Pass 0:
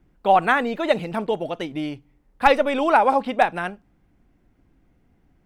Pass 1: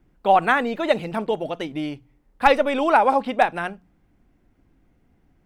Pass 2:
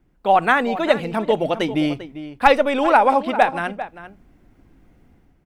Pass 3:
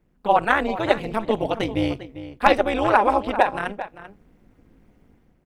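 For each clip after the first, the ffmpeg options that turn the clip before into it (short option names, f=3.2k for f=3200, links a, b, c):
-af "bandreject=f=60:t=h:w=6,bandreject=f=120:t=h:w=6,bandreject=f=180:t=h:w=6"
-filter_complex "[0:a]dynaudnorm=f=100:g=7:m=9dB,asplit=2[a][b];[b]adelay=396.5,volume=-13dB,highshelf=f=4k:g=-8.92[c];[a][c]amix=inputs=2:normalize=0,volume=-1dB"
-af "tremolo=f=210:d=0.889,volume=1dB"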